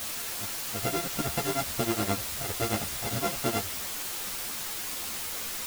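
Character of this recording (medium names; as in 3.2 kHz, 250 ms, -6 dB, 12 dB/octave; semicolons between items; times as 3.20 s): a buzz of ramps at a fixed pitch in blocks of 64 samples; tremolo triangle 9.6 Hz, depth 100%; a quantiser's noise floor 6-bit, dither triangular; a shimmering, thickened sound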